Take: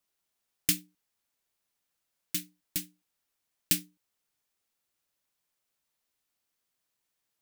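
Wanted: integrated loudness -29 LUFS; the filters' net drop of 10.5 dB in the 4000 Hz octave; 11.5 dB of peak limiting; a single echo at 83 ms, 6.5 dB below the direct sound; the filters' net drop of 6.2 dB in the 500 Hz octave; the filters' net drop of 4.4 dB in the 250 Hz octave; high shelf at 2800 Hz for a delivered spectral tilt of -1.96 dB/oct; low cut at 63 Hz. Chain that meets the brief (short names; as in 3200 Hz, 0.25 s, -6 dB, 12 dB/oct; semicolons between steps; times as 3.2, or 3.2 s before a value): HPF 63 Hz; bell 250 Hz -4 dB; bell 500 Hz -7.5 dB; high shelf 2800 Hz -7.5 dB; bell 4000 Hz -7.5 dB; limiter -27 dBFS; echo 83 ms -6.5 dB; gain +16.5 dB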